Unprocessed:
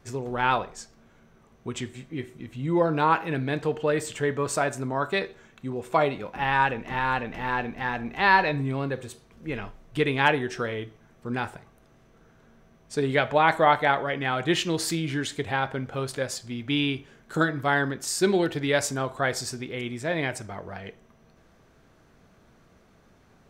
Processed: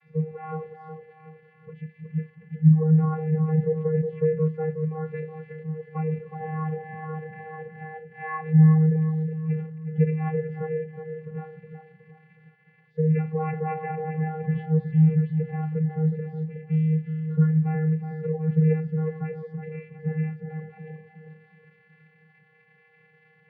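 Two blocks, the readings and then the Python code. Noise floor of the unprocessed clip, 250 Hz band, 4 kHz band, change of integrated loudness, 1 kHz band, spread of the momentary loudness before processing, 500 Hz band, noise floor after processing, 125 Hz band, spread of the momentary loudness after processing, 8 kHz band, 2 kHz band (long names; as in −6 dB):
−59 dBFS, +4.0 dB, below −30 dB, +1.0 dB, −11.5 dB, 15 LU, −3.0 dB, −60 dBFS, +11.0 dB, 19 LU, below −40 dB, −16.0 dB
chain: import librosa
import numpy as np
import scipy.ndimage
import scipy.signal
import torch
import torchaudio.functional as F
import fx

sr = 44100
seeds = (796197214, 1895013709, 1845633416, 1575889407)

p1 = x + 0.5 * 10.0 ** (-18.5 / 20.0) * np.diff(np.sign(x), prepend=np.sign(x[:1]))
p2 = fx.peak_eq(p1, sr, hz=2100.0, db=13.5, octaves=0.24)
p3 = fx.over_compress(p2, sr, threshold_db=-28.0, ratio=-1.0)
p4 = p2 + (p3 * 10.0 ** (-2.5 / 20.0))
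p5 = fx.vocoder(p4, sr, bands=16, carrier='square', carrier_hz=157.0)
p6 = fx.air_absorb(p5, sr, metres=390.0)
p7 = fx.echo_filtered(p6, sr, ms=367, feedback_pct=55, hz=2100.0, wet_db=-4.5)
p8 = fx.spectral_expand(p7, sr, expansion=1.5)
y = p8 * 10.0 ** (1.5 / 20.0)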